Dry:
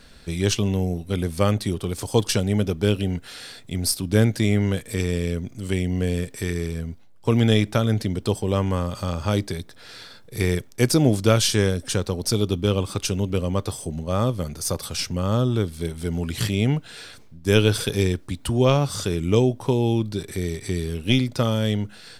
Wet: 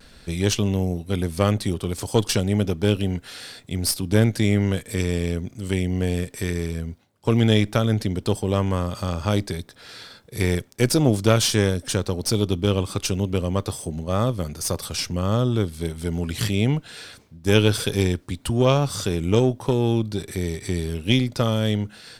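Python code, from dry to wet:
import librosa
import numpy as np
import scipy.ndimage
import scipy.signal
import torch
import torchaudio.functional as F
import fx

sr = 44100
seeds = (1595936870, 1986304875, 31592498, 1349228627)

y = fx.diode_clip(x, sr, knee_db=-17.0)
y = fx.vibrato(y, sr, rate_hz=0.37, depth_cents=13.0)
y = y * 10.0 ** (1.0 / 20.0)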